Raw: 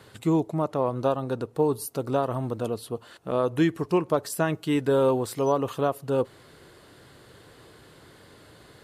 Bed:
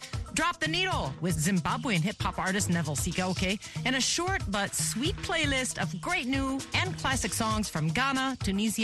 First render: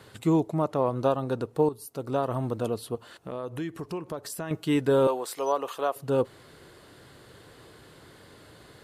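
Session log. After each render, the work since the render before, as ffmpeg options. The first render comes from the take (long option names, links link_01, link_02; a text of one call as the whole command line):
ffmpeg -i in.wav -filter_complex "[0:a]asettb=1/sr,asplit=3[link_01][link_02][link_03];[link_01]atrim=end=2.954[link_04];[link_02]atrim=start=2.95:end=4.51,asetpts=PTS-STARTPTS,afade=type=in:duration=0.004:curve=qsin,afade=type=out:start_time=1.556:duration=0.004:curve=qsin,acompressor=threshold=-35dB:ratio=2.5:attack=3.2:release=140:knee=1:detection=peak[link_05];[link_03]atrim=start=4.506[link_06];[link_04][link_05]acrossfade=duration=0.004:curve1=hsin:curve2=qsin[link_07];[link_07][link_06]acrossfade=duration=0.004:curve1=qsin:curve2=hsin,asettb=1/sr,asplit=3[link_08][link_09][link_10];[link_08]atrim=end=5.074[link_11];[link_09]atrim=start=5.07:end=5.96,asetpts=PTS-STARTPTS,afade=type=in:duration=0.004:curve=qsin,afade=type=out:start_time=0.886:duration=0.004:curve=qsin,highpass=530[link_12];[link_10]atrim=start=5.956[link_13];[link_11][link_12]acrossfade=duration=0.004:curve1=hsin:curve2=qsin[link_14];[link_14][link_13]acrossfade=duration=0.004:curve1=qsin:curve2=hsin,asplit=2[link_15][link_16];[link_15]atrim=end=1.69,asetpts=PTS-STARTPTS,afade=type=out:start_time=1.686:duration=0.004:curve=hsin:silence=0.223872[link_17];[link_16]atrim=start=1.69,asetpts=PTS-STARTPTS,afade=type=in:duration=0.7:silence=0.223872[link_18];[link_17][link_18]concat=n=2:v=0:a=1" out.wav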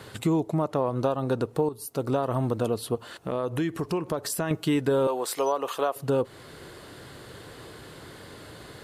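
ffmpeg -i in.wav -filter_complex "[0:a]asplit=2[link_01][link_02];[link_02]alimiter=limit=-21dB:level=0:latency=1:release=435,volume=1.5dB[link_03];[link_01][link_03]amix=inputs=2:normalize=0,acompressor=threshold=-22dB:ratio=3" out.wav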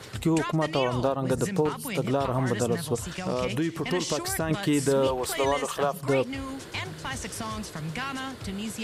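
ffmpeg -i in.wav -i bed.wav -filter_complex "[1:a]volume=-5.5dB[link_01];[0:a][link_01]amix=inputs=2:normalize=0" out.wav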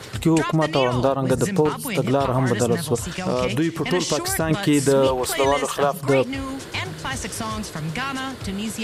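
ffmpeg -i in.wav -af "volume=6dB" out.wav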